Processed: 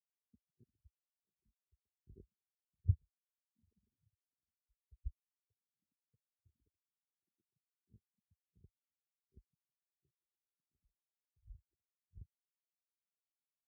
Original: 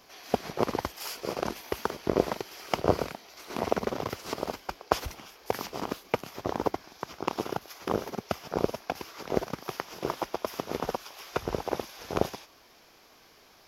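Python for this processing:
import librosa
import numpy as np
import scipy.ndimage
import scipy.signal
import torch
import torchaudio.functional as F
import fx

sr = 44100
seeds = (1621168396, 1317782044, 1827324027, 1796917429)

y = fx.tone_stack(x, sr, knobs='10-0-1')
y = fx.spectral_expand(y, sr, expansion=4.0)
y = y * 10.0 ** (9.5 / 20.0)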